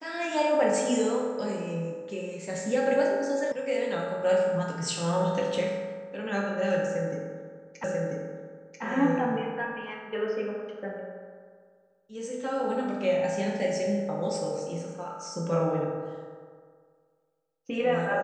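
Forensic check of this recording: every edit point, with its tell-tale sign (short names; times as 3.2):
3.52 sound cut off
7.84 repeat of the last 0.99 s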